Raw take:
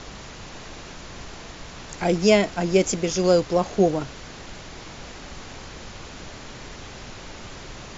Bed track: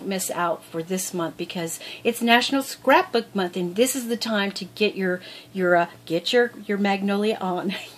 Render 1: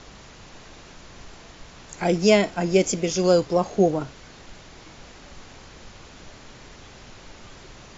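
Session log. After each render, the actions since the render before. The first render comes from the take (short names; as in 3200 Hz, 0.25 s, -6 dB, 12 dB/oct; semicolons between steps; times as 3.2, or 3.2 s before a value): noise print and reduce 6 dB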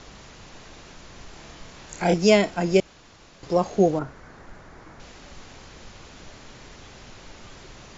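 1.33–2.14 flutter echo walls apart 4.7 m, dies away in 0.29 s; 2.8–3.43 room tone; 3.99–5 resonant high shelf 2200 Hz -9 dB, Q 1.5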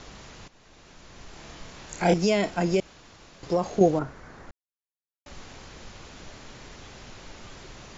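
0.48–1.54 fade in, from -15 dB; 2.13–3.81 compressor, threshold -18 dBFS; 4.51–5.26 mute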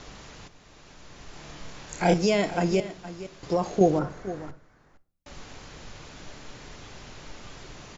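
echo 0.465 s -14.5 dB; shoebox room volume 590 m³, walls furnished, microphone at 0.39 m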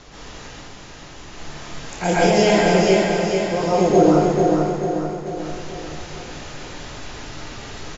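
feedback echo 0.44 s, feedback 52%, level -4.5 dB; plate-style reverb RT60 1.1 s, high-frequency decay 1×, pre-delay 0.105 s, DRR -8 dB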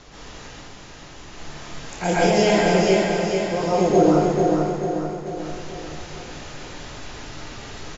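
gain -2 dB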